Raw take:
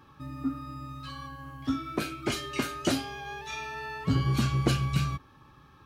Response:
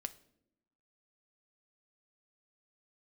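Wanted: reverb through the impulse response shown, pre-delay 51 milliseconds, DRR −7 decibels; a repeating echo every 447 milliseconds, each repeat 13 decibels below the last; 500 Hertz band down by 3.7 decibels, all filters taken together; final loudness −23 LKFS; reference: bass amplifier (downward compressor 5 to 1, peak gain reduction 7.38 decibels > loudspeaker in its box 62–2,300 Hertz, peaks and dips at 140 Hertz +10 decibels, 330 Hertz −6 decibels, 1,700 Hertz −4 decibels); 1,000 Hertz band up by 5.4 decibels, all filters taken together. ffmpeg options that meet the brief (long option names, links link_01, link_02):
-filter_complex "[0:a]equalizer=frequency=500:width_type=o:gain=-5,equalizer=frequency=1000:width_type=o:gain=8.5,aecho=1:1:447|894|1341:0.224|0.0493|0.0108,asplit=2[link_01][link_02];[1:a]atrim=start_sample=2205,adelay=51[link_03];[link_02][link_03]afir=irnorm=-1:irlink=0,volume=9.5dB[link_04];[link_01][link_04]amix=inputs=2:normalize=0,acompressor=threshold=-20dB:ratio=5,highpass=frequency=62:width=0.5412,highpass=frequency=62:width=1.3066,equalizer=frequency=140:width_type=q:width=4:gain=10,equalizer=frequency=330:width_type=q:width=4:gain=-6,equalizer=frequency=1700:width_type=q:width=4:gain=-4,lowpass=frequency=2300:width=0.5412,lowpass=frequency=2300:width=1.3066"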